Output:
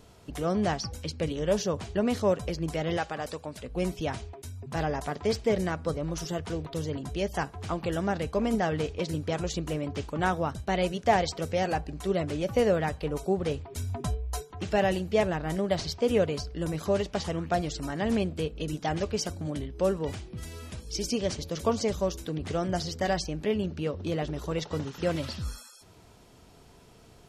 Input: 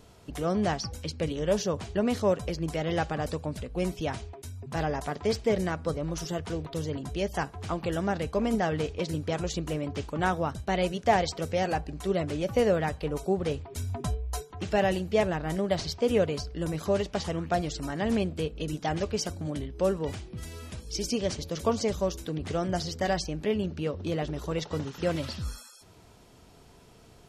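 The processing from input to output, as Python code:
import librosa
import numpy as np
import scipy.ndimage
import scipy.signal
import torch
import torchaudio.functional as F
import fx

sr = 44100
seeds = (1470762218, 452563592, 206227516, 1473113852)

y = fx.low_shelf(x, sr, hz=290.0, db=-12.0, at=(2.97, 3.64))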